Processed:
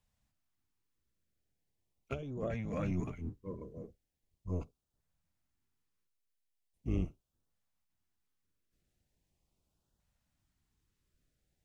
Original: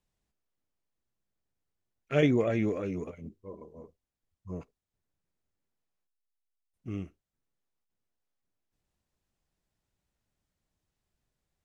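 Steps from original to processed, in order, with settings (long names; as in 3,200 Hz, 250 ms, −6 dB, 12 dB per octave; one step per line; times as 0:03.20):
sub-octave generator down 1 octave, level 0 dB
compressor whose output falls as the input rises −32 dBFS, ratio −1
auto-filter notch saw up 0.4 Hz 320–2,400 Hz
level −3 dB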